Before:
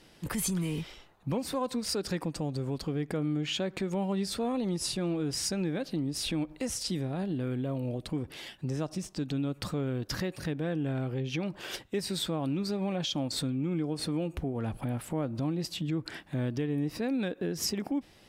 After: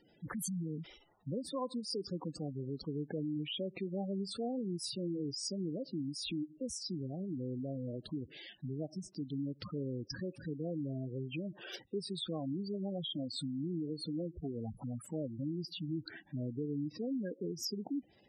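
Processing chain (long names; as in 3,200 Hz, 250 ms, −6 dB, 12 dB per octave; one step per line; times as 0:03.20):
low-shelf EQ 79 Hz −10.5 dB
gate on every frequency bin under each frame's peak −10 dB strong
level −5 dB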